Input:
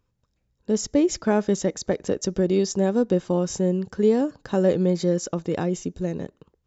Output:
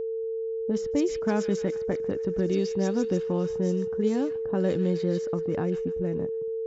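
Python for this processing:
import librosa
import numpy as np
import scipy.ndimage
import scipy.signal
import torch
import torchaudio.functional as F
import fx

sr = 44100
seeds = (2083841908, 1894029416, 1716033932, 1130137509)

p1 = fx.dynamic_eq(x, sr, hz=550.0, q=1.2, threshold_db=-35.0, ratio=4.0, max_db=-6)
p2 = fx.echo_wet_highpass(p1, sr, ms=148, feedback_pct=69, hz=2400.0, wet_db=-6)
p3 = fx.env_lowpass(p2, sr, base_hz=390.0, full_db=-15.5)
p4 = fx.level_steps(p3, sr, step_db=17)
p5 = p3 + (p4 * librosa.db_to_amplitude(-1.0))
p6 = p5 + 10.0 ** (-23.0 / 20.0) * np.sin(2.0 * np.pi * 450.0 * np.arange(len(p5)) / sr)
y = p6 * librosa.db_to_amplitude(-5.0)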